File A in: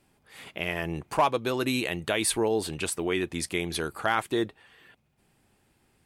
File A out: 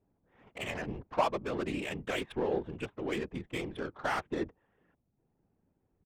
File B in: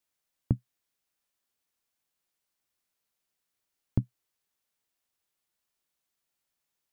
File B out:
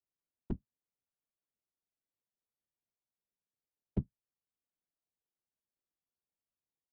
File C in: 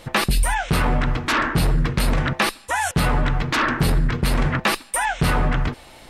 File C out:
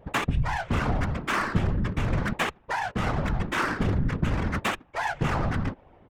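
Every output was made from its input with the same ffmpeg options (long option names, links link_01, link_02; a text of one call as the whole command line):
ffmpeg -i in.wav -af "aresample=8000,aresample=44100,adynamicsmooth=sensitivity=2.5:basefreq=780,afftfilt=real='hypot(re,im)*cos(2*PI*random(0))':imag='hypot(re,im)*sin(2*PI*random(1))':win_size=512:overlap=0.75" out.wav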